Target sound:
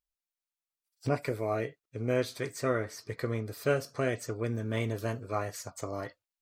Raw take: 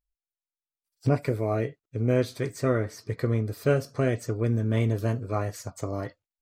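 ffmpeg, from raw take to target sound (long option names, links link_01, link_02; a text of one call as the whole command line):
ffmpeg -i in.wav -af "lowshelf=frequency=400:gain=-10" out.wav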